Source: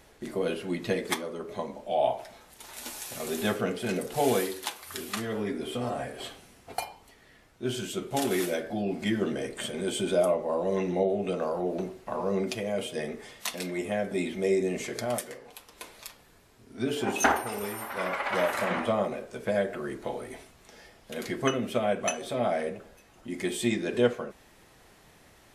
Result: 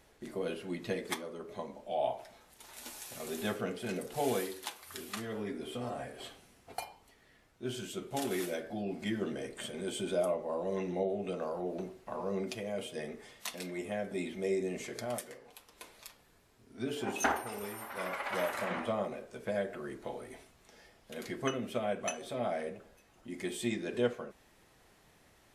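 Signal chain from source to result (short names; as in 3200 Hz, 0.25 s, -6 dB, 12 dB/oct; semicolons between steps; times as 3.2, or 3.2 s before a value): 17.95–18.49 high shelf 9400 Hz +11.5 dB; gain -7 dB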